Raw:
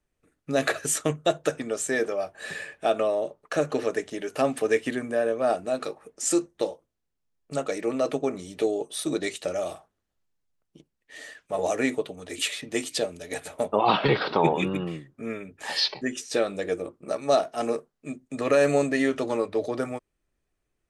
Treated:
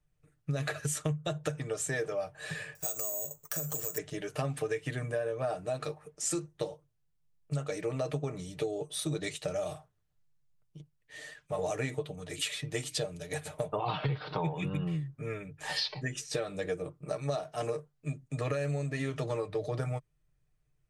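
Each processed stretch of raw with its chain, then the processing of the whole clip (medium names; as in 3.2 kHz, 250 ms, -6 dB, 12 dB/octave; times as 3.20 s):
2.75–3.98 s: compression 2.5:1, threshold -38 dBFS + careless resampling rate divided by 6×, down none, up zero stuff
whole clip: resonant low shelf 180 Hz +8 dB, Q 3; comb 6.6 ms, depth 48%; compression 16:1, threshold -24 dBFS; trim -4.5 dB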